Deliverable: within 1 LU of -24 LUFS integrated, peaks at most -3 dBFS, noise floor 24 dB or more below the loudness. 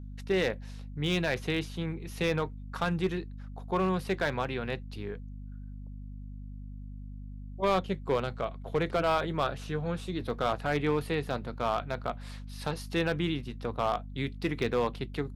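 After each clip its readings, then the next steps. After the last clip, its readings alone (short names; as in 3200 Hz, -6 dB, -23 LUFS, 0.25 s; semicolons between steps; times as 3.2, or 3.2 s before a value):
clipped 0.6%; flat tops at -19.5 dBFS; hum 50 Hz; harmonics up to 250 Hz; hum level -39 dBFS; loudness -31.5 LUFS; peak -19.5 dBFS; loudness target -24.0 LUFS
-> clip repair -19.5 dBFS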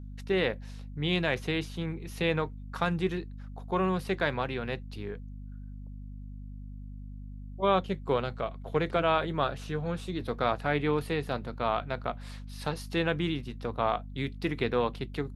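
clipped 0.0%; hum 50 Hz; harmonics up to 250 Hz; hum level -39 dBFS
-> de-hum 50 Hz, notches 5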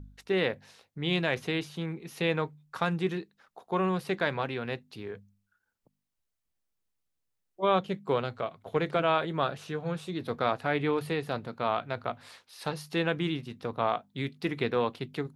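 hum none; loudness -31.0 LUFS; peak -12.0 dBFS; loudness target -24.0 LUFS
-> gain +7 dB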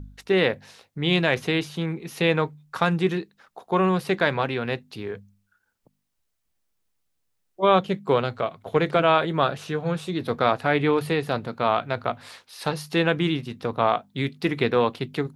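loudness -24.0 LUFS; peak -5.0 dBFS; noise floor -74 dBFS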